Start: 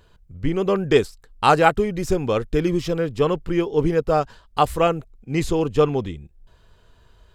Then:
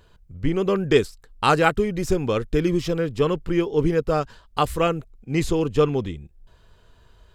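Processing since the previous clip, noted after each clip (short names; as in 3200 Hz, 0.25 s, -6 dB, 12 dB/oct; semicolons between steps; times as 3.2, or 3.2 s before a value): dynamic EQ 750 Hz, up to -6 dB, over -30 dBFS, Q 1.7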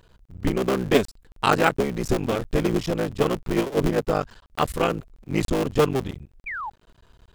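cycle switcher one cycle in 3, muted; painted sound fall, 6.46–6.7, 780–2500 Hz -31 dBFS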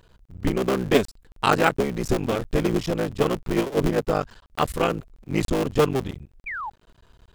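nothing audible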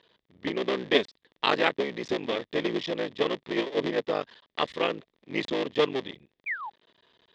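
speaker cabinet 310–4900 Hz, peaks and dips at 770 Hz -4 dB, 1400 Hz -8 dB, 1900 Hz +7 dB, 3500 Hz +9 dB; gain -3 dB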